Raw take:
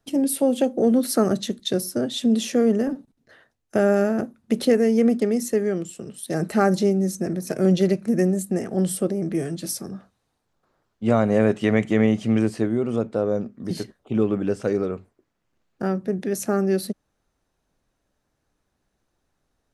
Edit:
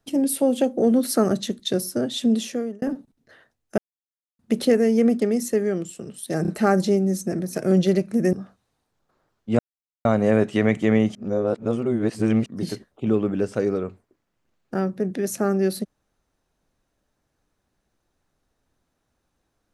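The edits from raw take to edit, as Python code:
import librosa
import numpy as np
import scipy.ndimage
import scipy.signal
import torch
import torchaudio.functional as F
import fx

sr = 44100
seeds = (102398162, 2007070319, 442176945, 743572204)

y = fx.edit(x, sr, fx.fade_out_span(start_s=2.29, length_s=0.53),
    fx.silence(start_s=3.78, length_s=0.61),
    fx.stutter(start_s=6.42, slice_s=0.03, count=3),
    fx.cut(start_s=8.27, length_s=1.6),
    fx.insert_silence(at_s=11.13, length_s=0.46),
    fx.reverse_span(start_s=12.23, length_s=1.31), tone=tone)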